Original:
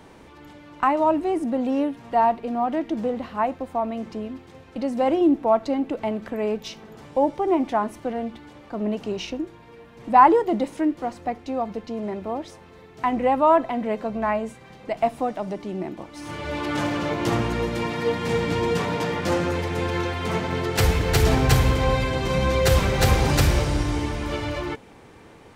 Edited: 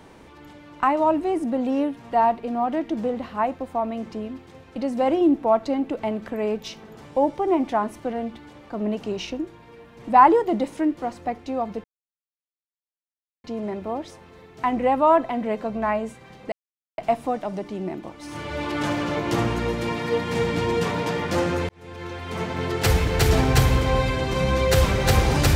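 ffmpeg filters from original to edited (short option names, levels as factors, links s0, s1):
-filter_complex "[0:a]asplit=4[s0][s1][s2][s3];[s0]atrim=end=11.84,asetpts=PTS-STARTPTS,afade=t=out:st=11.836:d=0.004:c=hsin,apad=pad_dur=1.6[s4];[s1]atrim=start=11.84:end=14.92,asetpts=PTS-STARTPTS,afade=t=in:d=0.004:c=hsin,afade=t=out:st=3.076:d=0.004:c=hsin,apad=pad_dur=0.46[s5];[s2]atrim=start=14.92:end=19.63,asetpts=PTS-STARTPTS,afade=t=in:d=0.004:c=hsin,afade=t=out:st=4.706:d=0.004:c=hsin[s6];[s3]atrim=start=19.63,asetpts=PTS-STARTPTS,afade=t=in:d=1.06[s7];[s4][s5][s6][s7]concat=n=4:v=0:a=1"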